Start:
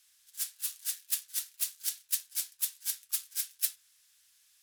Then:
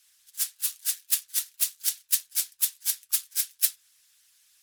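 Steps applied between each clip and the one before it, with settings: harmonic-percussive split harmonic -11 dB; trim +7 dB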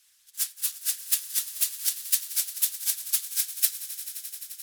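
echo with a slow build-up 87 ms, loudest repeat 5, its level -17.5 dB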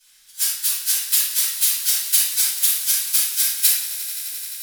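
reverberation RT60 0.85 s, pre-delay 3 ms, DRR -12.5 dB; trim -4 dB

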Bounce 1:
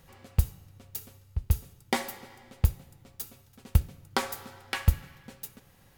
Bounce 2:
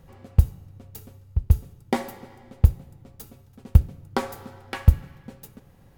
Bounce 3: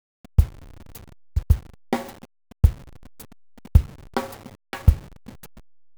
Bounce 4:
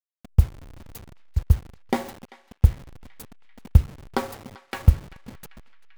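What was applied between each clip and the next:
tilt shelf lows +6.5 dB, about 1.1 kHz; trim +1 dB
send-on-delta sampling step -36.5 dBFS
band-passed feedback delay 391 ms, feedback 66%, band-pass 2.3 kHz, level -17 dB

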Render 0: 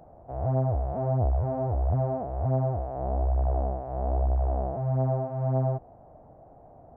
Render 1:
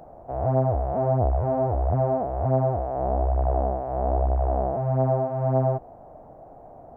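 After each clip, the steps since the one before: peaking EQ 90 Hz -6.5 dB 2.3 oct; trim +7 dB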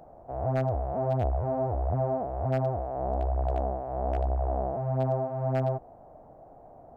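wavefolder -13 dBFS; trim -5 dB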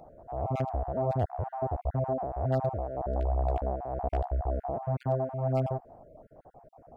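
random holes in the spectrogram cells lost 30%

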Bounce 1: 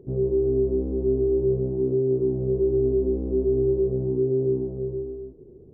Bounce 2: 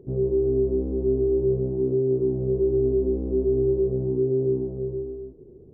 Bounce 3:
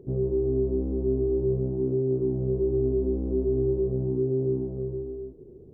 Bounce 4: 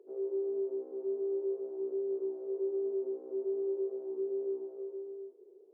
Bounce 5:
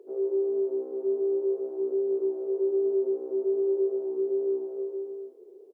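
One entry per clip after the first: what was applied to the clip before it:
no audible change
dynamic bell 440 Hz, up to -5 dB, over -34 dBFS, Q 2.4
elliptic high-pass 390 Hz, stop band 80 dB; trim -6.5 dB
feedback delay 240 ms, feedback 53%, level -18 dB; trim +7.5 dB

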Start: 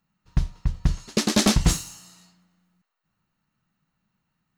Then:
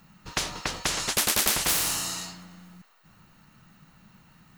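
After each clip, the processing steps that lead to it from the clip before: spectrum-flattening compressor 10:1; trim +1 dB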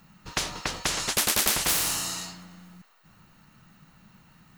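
no audible change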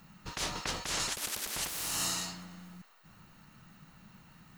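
compressor with a negative ratio -31 dBFS, ratio -1; trim -4.5 dB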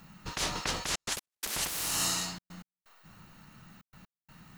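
trance gate "xxxxxxxx.x.." 126 bpm -60 dB; trim +3 dB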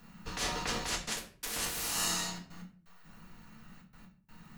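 reverberation RT60 0.45 s, pre-delay 4 ms, DRR -1.5 dB; trim -5 dB

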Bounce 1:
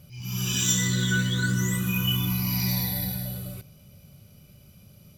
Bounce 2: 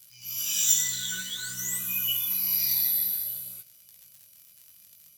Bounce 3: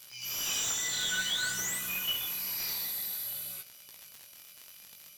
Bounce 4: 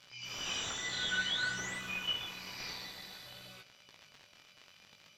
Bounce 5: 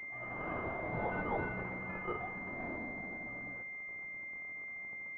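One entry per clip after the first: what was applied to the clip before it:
crackle 69 per s -37 dBFS; pre-emphasis filter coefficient 0.97; chorus 0.55 Hz, delay 16 ms, depth 7.1 ms; trim +6.5 dB
compression 2.5:1, threshold -31 dBFS, peak gain reduction 9.5 dB; overdrive pedal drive 18 dB, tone 2.8 kHz, clips at -18 dBFS
distance through air 170 m; trim +1 dB
class-D stage that switches slowly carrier 2.1 kHz; trim +3.5 dB

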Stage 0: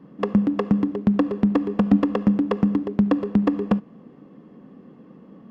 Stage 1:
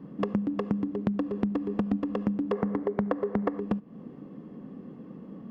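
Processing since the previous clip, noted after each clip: time-frequency box 2.53–3.59 s, 370–2300 Hz +11 dB; bass shelf 470 Hz +6 dB; compression 5:1, threshold -24 dBFS, peak gain reduction 16.5 dB; trim -2 dB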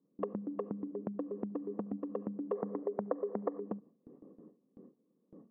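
resonances exaggerated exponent 1.5; band-pass filter 760 Hz, Q 0.74; gate with hold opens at -40 dBFS; trim -4 dB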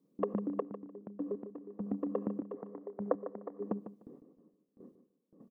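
trance gate "xxxx....x..." 100 bpm -12 dB; feedback delay 150 ms, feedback 19%, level -11.5 dB; trim +3.5 dB

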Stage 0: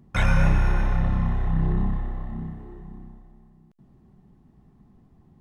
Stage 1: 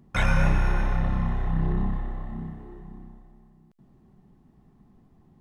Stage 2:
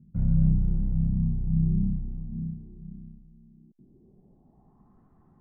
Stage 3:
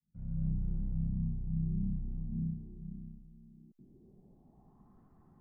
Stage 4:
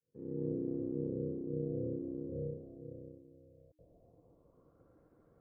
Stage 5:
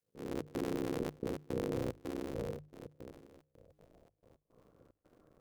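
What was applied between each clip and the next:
peaking EQ 75 Hz -4 dB 2.3 oct
low-pass sweep 180 Hz -> 1.3 kHz, 3.33–4.99 s; trim -3 dB
fade-in on the opening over 1.26 s; gain riding within 4 dB 0.5 s; trim -6.5 dB
ring modulator 310 Hz; trim -1.5 dB
cycle switcher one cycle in 3, muted; trance gate "xxx.xxxx.x." 110 bpm -24 dB; hum notches 50/100/150 Hz; trim +3 dB

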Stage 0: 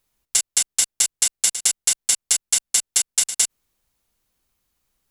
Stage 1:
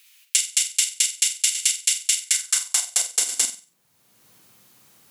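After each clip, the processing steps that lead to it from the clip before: flutter echo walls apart 8.1 m, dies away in 0.31 s; high-pass sweep 2.5 kHz -> 110 Hz, 2.20–3.89 s; three bands compressed up and down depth 70%; trim -3 dB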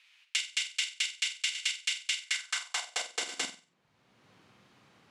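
low-pass 2.9 kHz 12 dB/octave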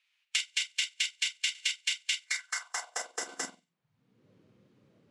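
spectral noise reduction 14 dB; trim +1 dB

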